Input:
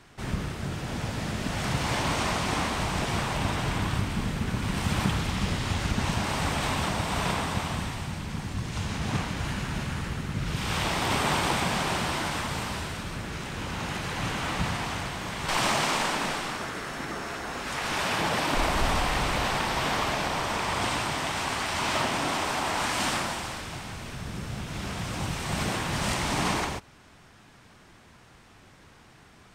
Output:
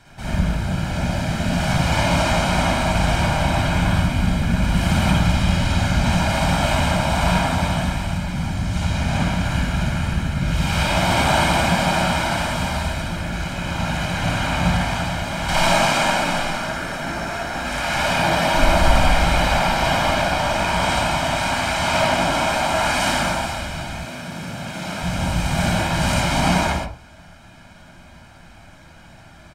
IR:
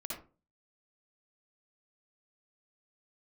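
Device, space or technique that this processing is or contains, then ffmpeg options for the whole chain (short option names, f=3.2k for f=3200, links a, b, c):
microphone above a desk: -filter_complex "[0:a]aecho=1:1:1.3:0.6[a];[1:a]atrim=start_sample=2205[b];[a][b]afir=irnorm=-1:irlink=0,asettb=1/sr,asplit=3[c][d][e];[c]atrim=end=24.054[f];[d]atrim=start=24.05:end=25.03,asetpts=PTS-STARTPTS,afade=t=in:d=0.004:c=qsin,afade=t=out:st=0.976:d=0.004:c=qsin,highpass=190[g];[e]atrim=start=25.026[h];[f][g]acrossfade=d=0.004:c1=hsin:c2=qsin[i];[i][h]acrossfade=d=0.004:c1=qsin:c2=hsin,volume=7dB"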